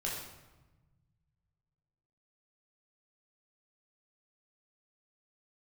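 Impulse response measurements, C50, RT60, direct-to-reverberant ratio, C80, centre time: 2.0 dB, 1.1 s, −5.0 dB, 4.5 dB, 60 ms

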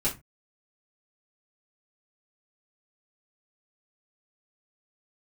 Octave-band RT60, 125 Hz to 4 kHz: 0.40, 0.30, 0.25, 0.25, 0.20, 0.15 seconds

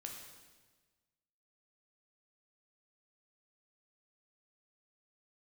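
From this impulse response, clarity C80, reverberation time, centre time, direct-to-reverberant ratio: 5.5 dB, 1.3 s, 49 ms, 0.5 dB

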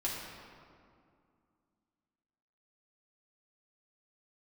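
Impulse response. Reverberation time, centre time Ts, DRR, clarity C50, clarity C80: 2.3 s, 100 ms, −6.5 dB, 0.5 dB, 2.0 dB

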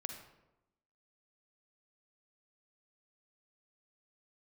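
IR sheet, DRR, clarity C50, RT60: 4.5 dB, 5.5 dB, 0.95 s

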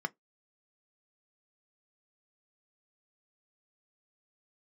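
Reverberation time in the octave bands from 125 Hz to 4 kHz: 0.15, 0.15, 0.15, 0.15, 0.10, 0.10 seconds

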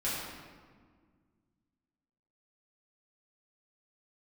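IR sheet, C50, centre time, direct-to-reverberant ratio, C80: −1.0 dB, 98 ms, −10.0 dB, 1.0 dB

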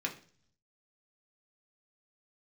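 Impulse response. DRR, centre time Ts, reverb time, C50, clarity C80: −0.5 dB, 12 ms, 0.45 s, 12.5 dB, 17.0 dB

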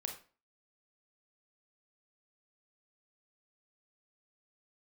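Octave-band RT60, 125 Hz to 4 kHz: 0.40, 0.40, 0.40, 0.35, 0.35, 0.30 seconds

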